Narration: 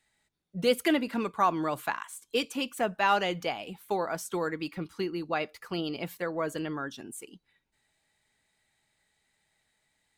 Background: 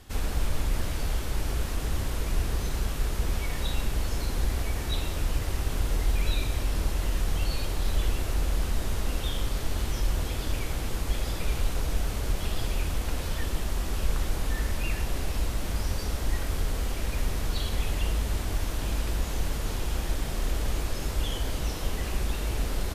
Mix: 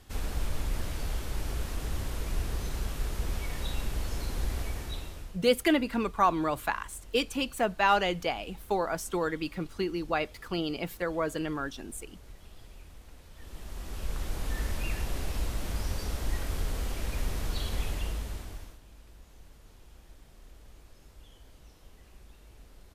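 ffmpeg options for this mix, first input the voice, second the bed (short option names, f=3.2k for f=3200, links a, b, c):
-filter_complex "[0:a]adelay=4800,volume=1dB[a];[1:a]volume=13.5dB,afade=t=out:st=4.63:d=0.75:silence=0.141254,afade=t=in:st=13.33:d=1.3:silence=0.125893,afade=t=out:st=17.8:d=1:silence=0.0891251[b];[a][b]amix=inputs=2:normalize=0"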